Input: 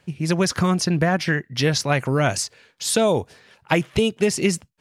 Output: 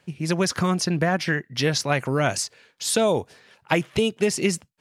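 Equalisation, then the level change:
low-shelf EQ 78 Hz −10.5 dB
−1.5 dB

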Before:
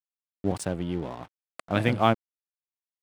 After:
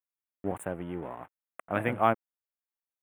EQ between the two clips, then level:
Butterworth band-reject 5,000 Hz, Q 0.59
low-shelf EQ 330 Hz −10.5 dB
0.0 dB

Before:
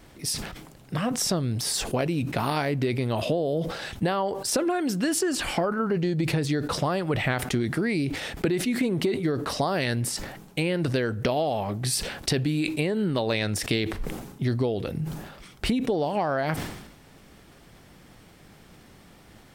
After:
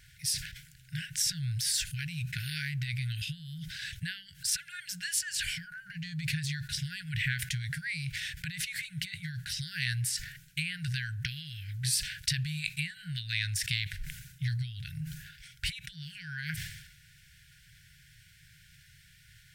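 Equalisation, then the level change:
dynamic equaliser 1,400 Hz, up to −7 dB, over −50 dBFS, Q 6.1
linear-phase brick-wall band-stop 160–1,400 Hz
low-shelf EQ 69 Hz −6.5 dB
−2.0 dB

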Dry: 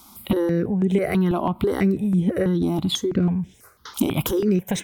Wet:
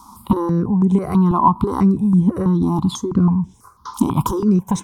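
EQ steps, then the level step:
drawn EQ curve 230 Hz 0 dB, 630 Hz −14 dB, 1,000 Hz +12 dB, 1,800 Hz −19 dB, 2,900 Hz −16 dB, 5,600 Hz −5 dB, 9,500 Hz −6 dB, 14,000 Hz −15 dB
+6.0 dB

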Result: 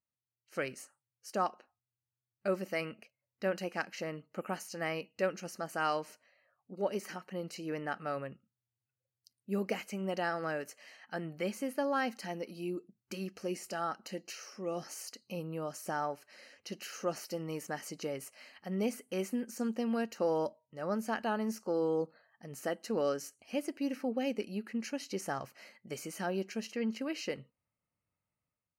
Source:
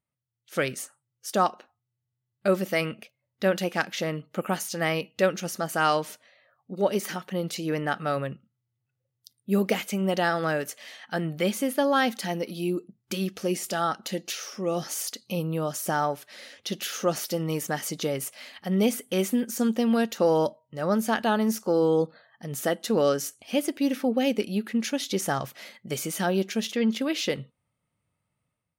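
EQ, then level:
Butterworth band-reject 3,500 Hz, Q 3.7
parametric band 140 Hz −4.5 dB 0.91 octaves
high-shelf EQ 9,300 Hz −10 dB
−9.0 dB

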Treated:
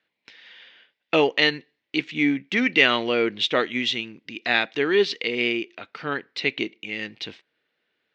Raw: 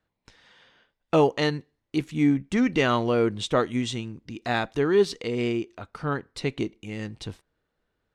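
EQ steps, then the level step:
band-pass filter 270–7,100 Hz
high-frequency loss of the air 210 metres
high shelf with overshoot 1,600 Hz +11 dB, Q 1.5
+2.0 dB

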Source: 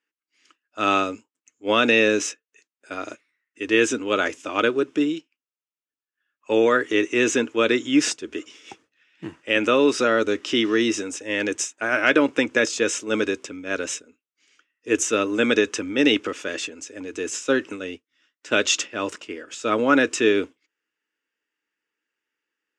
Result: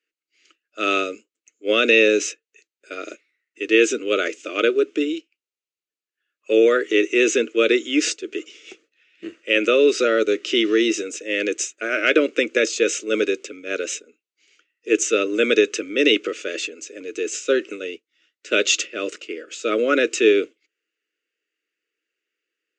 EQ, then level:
loudspeaker in its box 260–6,800 Hz, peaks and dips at 270 Hz −9 dB, 1,000 Hz −10 dB, 1,700 Hz −6 dB, 3,400 Hz −4 dB, 5,400 Hz −7 dB
phaser with its sweep stopped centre 350 Hz, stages 4
+6.5 dB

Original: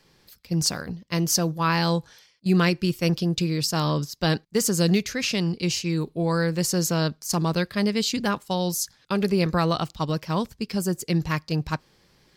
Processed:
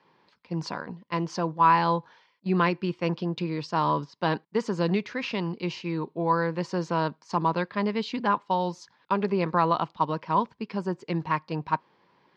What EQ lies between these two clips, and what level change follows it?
band-pass filter 200–3,100 Hz
high-frequency loss of the air 97 metres
parametric band 970 Hz +13 dB 0.34 octaves
−2.0 dB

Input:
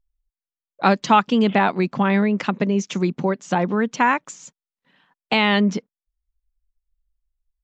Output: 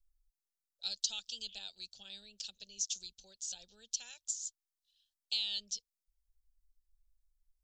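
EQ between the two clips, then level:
inverse Chebyshev band-stop filter 140–2,200 Hz, stop band 40 dB
parametric band 110 Hz −13 dB 2.1 octaves
+1.0 dB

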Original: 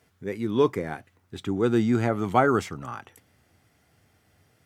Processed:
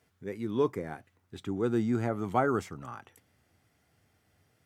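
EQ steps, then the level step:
dynamic equaliser 3,200 Hz, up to −5 dB, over −43 dBFS, Q 0.81
−6.0 dB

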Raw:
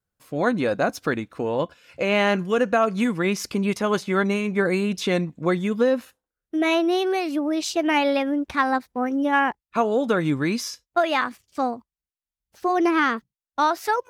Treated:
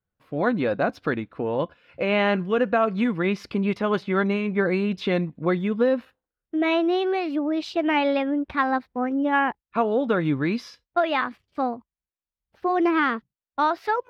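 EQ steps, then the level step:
high-shelf EQ 6,600 Hz +10.5 dB
dynamic equaliser 4,500 Hz, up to +5 dB, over −40 dBFS, Q 0.87
high-frequency loss of the air 410 metres
0.0 dB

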